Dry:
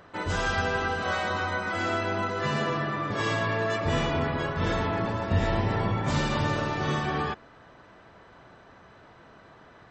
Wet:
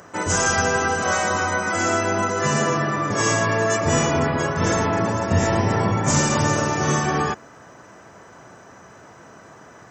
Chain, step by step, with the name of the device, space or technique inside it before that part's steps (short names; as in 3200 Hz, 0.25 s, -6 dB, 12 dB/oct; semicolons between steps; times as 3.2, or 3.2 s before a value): budget condenser microphone (HPF 94 Hz; resonant high shelf 5000 Hz +8.5 dB, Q 3); gain +7.5 dB